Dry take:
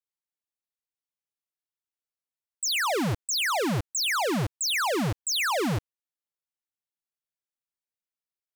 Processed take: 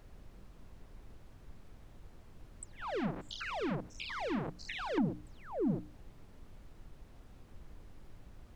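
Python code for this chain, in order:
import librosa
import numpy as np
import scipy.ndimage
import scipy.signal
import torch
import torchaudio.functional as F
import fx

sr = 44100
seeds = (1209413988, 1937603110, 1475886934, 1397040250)

y = fx.spec_steps(x, sr, hold_ms=100, at=(2.72, 4.98))
y = fx.hum_notches(y, sr, base_hz=60, count=5)
y = fx.env_lowpass_down(y, sr, base_hz=320.0, full_db=-25.5)
y = scipy.signal.sosfilt(scipy.signal.butter(4, 180.0, 'highpass', fs=sr, output='sos'), y)
y = fx.peak_eq(y, sr, hz=15000.0, db=-11.5, octaves=1.5)
y = fx.dmg_noise_colour(y, sr, seeds[0], colour='brown', level_db=-51.0)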